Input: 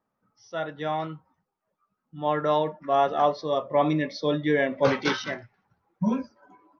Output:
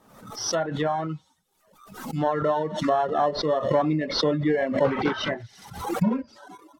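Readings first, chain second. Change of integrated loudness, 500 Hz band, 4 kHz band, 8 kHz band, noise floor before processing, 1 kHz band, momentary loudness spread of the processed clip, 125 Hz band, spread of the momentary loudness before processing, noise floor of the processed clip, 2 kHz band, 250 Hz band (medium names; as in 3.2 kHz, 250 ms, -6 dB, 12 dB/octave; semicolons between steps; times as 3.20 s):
+0.5 dB, +1.0 dB, +4.5 dB, no reading, -81 dBFS, 0.0 dB, 12 LU, +3.5 dB, 11 LU, -66 dBFS, -1.5 dB, +2.0 dB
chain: in parallel at -9 dB: sample-rate reducer 2.4 kHz, jitter 0%; on the sum: treble shelf 3.9 kHz +7 dB; compression 2.5:1, threshold -31 dBFS, peak gain reduction 12 dB; feedback echo behind a high-pass 87 ms, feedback 51%, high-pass 3.3 kHz, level -12 dB; low-pass that closes with the level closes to 1.7 kHz, closed at -30 dBFS; reverb removal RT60 0.69 s; swell ahead of each attack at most 70 dB/s; trim +8 dB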